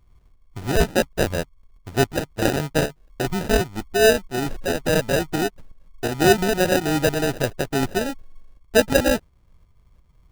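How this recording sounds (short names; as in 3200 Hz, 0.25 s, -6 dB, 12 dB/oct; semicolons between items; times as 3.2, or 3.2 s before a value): aliases and images of a low sample rate 1100 Hz, jitter 0%; tremolo saw up 2.8 Hz, depth 50%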